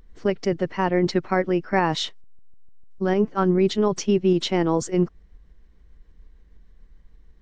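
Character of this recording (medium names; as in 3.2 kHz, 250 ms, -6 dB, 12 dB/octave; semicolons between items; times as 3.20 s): tremolo saw up 6.7 Hz, depth 30%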